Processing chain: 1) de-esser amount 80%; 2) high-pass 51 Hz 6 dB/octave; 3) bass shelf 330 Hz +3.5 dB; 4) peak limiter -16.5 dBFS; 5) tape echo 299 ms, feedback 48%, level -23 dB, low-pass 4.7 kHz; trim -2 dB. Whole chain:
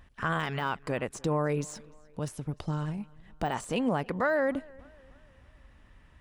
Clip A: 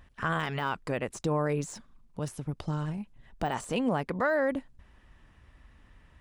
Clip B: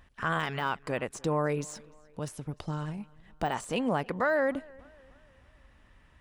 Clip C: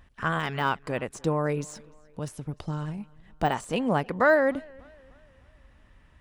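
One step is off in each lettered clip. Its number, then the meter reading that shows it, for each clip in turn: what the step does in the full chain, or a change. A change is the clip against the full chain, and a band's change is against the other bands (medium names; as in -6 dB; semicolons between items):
5, echo-to-direct -32.5 dB to none; 3, 125 Hz band -2.5 dB; 4, crest factor change +5.0 dB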